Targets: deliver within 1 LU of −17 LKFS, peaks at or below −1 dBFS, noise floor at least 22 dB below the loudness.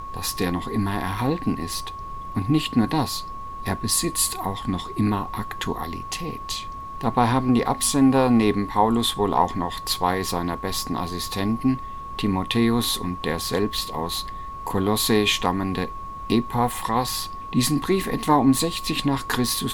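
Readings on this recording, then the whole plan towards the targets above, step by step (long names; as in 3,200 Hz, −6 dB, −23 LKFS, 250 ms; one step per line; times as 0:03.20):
interfering tone 1,100 Hz; level of the tone −33 dBFS; background noise floor −35 dBFS; target noise floor −46 dBFS; integrated loudness −23.5 LKFS; sample peak −5.0 dBFS; target loudness −17.0 LKFS
→ notch filter 1,100 Hz, Q 30
noise reduction from a noise print 11 dB
level +6.5 dB
brickwall limiter −1 dBFS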